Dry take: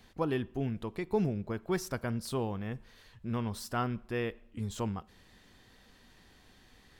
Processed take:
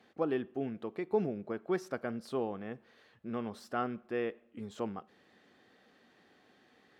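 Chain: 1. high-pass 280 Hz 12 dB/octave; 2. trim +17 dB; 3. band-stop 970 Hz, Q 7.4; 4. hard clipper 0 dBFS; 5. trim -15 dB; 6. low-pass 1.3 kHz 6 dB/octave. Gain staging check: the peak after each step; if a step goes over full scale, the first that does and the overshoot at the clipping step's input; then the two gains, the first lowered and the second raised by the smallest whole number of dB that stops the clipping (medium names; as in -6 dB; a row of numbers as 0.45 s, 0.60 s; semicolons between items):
-18.0 dBFS, -1.0 dBFS, -2.0 dBFS, -2.0 dBFS, -17.0 dBFS, -18.0 dBFS; nothing clips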